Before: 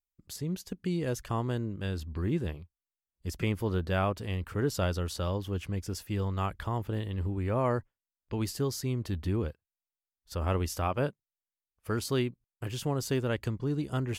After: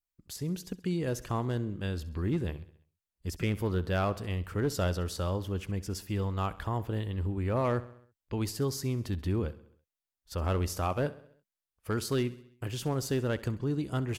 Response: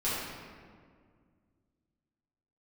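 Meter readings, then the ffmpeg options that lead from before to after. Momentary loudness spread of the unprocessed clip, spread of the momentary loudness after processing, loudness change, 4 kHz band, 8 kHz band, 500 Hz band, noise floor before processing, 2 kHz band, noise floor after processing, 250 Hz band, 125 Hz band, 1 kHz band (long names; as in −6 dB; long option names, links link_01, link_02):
6 LU, 8 LU, 0.0 dB, −0.5 dB, 0.0 dB, 0.0 dB, below −85 dBFS, −0.5 dB, below −85 dBFS, 0.0 dB, 0.0 dB, −0.5 dB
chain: -filter_complex "[0:a]adynamicequalizer=threshold=0.00251:dfrequency=3100:dqfactor=2.3:tfrequency=3100:tqfactor=2.3:attack=5:release=100:ratio=0.375:range=2:mode=cutabove:tftype=bell,asoftclip=type=hard:threshold=-22dB,asplit=2[link_01][link_02];[link_02]aecho=0:1:66|132|198|264|330:0.126|0.0692|0.0381|0.0209|0.0115[link_03];[link_01][link_03]amix=inputs=2:normalize=0"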